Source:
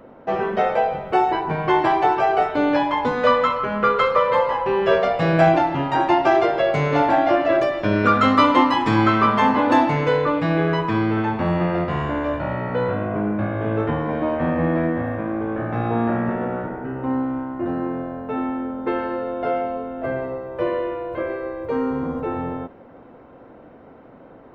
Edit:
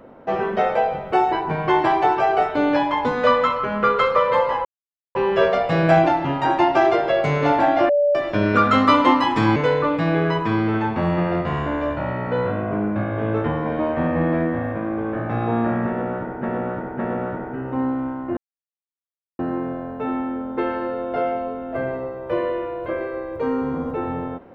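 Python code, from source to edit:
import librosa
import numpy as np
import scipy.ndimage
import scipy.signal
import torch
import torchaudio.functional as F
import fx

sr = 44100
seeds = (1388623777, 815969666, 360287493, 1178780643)

y = fx.edit(x, sr, fx.insert_silence(at_s=4.65, length_s=0.5),
    fx.bleep(start_s=7.39, length_s=0.26, hz=580.0, db=-14.0),
    fx.cut(start_s=9.06, length_s=0.93),
    fx.repeat(start_s=16.3, length_s=0.56, count=3),
    fx.insert_silence(at_s=17.68, length_s=1.02), tone=tone)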